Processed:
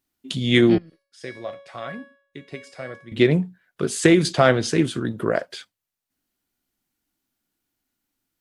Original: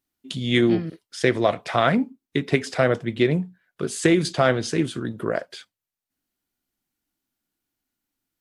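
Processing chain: 0.78–3.12 resonator 560 Hz, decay 0.56 s, mix 90%; gain +3 dB

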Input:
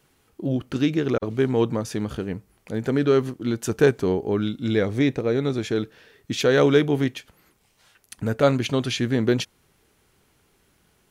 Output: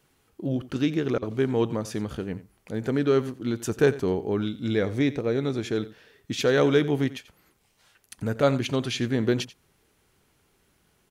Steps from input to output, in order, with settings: echo 88 ms -17 dB; gain -3 dB

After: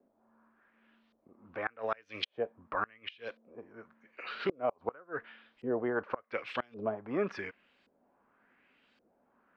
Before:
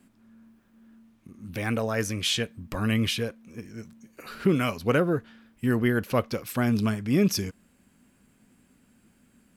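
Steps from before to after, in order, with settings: three-band isolator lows -21 dB, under 390 Hz, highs -17 dB, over 5500 Hz; LFO low-pass saw up 0.89 Hz 500–4400 Hz; flipped gate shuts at -17 dBFS, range -29 dB; gain -1.5 dB

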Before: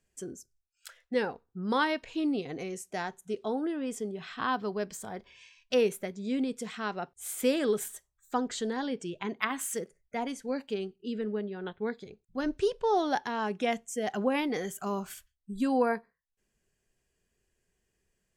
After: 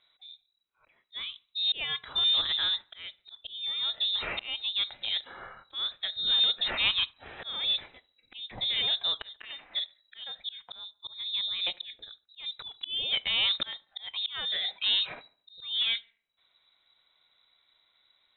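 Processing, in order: auto swell 0.787 s; in parallel at -8 dB: wavefolder -35.5 dBFS; on the sum: added harmonics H 4 -38 dB, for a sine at -20.5 dBFS; on a send: thin delay 72 ms, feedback 41%, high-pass 2600 Hz, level -20 dB; on the sum: inverted band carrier 3900 Hz; air absorption 73 m; gain +8.5 dB

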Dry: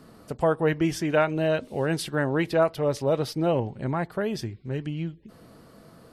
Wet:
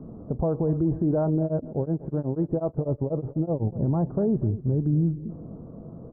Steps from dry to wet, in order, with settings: Bessel low-pass 610 Hz, order 8; low shelf 420 Hz +8 dB; limiter -21 dBFS, peak gain reduction 12 dB; feedback echo 0.242 s, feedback 34%, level -16 dB; 1.43–3.77 beating tremolo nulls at 8.1 Hz; gain +5 dB

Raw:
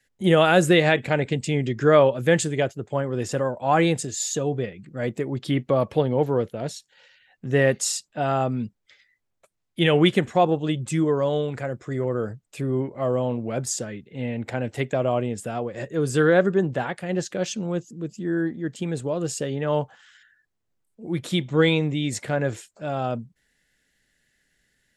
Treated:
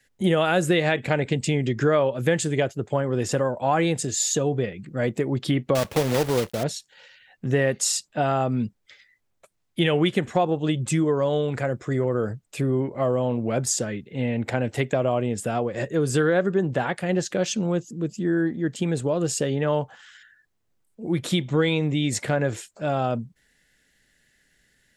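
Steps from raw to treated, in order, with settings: 5.75–6.65 block floating point 3-bit; compressor 3:1, threshold -24 dBFS, peak gain reduction 10 dB; gain +4.5 dB

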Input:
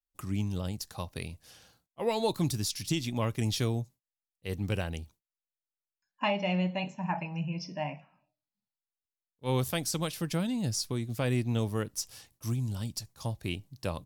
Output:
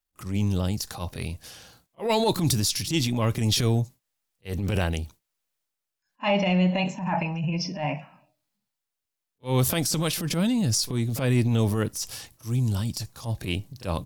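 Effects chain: pre-echo 33 ms -22.5 dB; transient shaper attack -11 dB, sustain +5 dB; gain +8 dB

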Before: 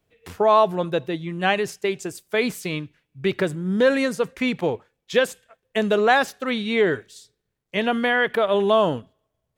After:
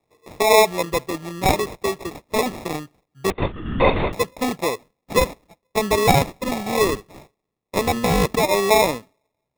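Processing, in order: HPF 350 Hz 6 dB/oct; sample-and-hold 29×; 3.3–4.13 LPC vocoder at 8 kHz whisper; gain +3 dB

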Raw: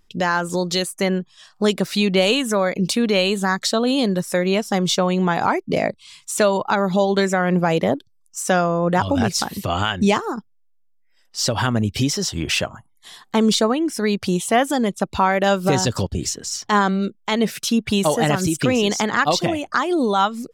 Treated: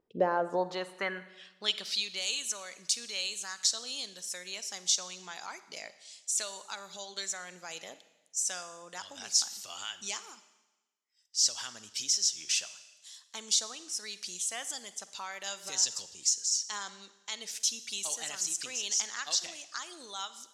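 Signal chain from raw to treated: band-pass sweep 480 Hz -> 6400 Hz, 0.26–2.13; Schroeder reverb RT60 1.1 s, DRR 13.5 dB

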